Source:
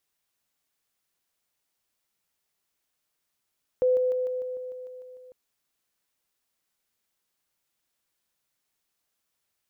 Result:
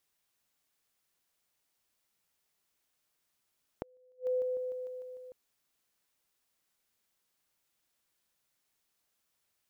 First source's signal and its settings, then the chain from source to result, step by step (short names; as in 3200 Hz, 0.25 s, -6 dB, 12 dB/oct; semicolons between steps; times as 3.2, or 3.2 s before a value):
level ladder 506 Hz -18.5 dBFS, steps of -3 dB, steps 10, 0.15 s 0.00 s
compressor, threshold -25 dBFS; flipped gate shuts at -25 dBFS, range -36 dB